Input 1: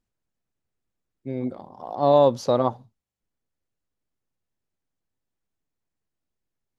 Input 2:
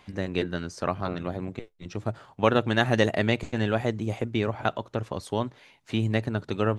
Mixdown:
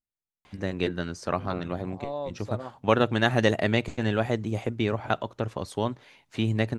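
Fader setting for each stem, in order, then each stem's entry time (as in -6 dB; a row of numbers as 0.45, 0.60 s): -17.0, 0.0 dB; 0.00, 0.45 s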